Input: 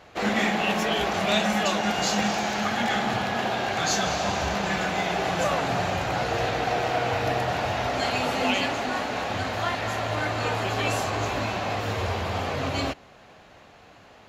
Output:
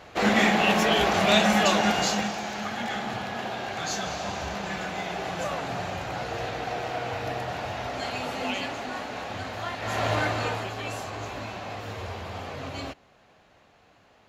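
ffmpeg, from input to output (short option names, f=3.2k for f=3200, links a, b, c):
-af "volume=12dB,afade=t=out:st=1.82:d=0.5:silence=0.354813,afade=t=in:st=9.79:d=0.28:silence=0.354813,afade=t=out:st=10.07:d=0.66:silence=0.281838"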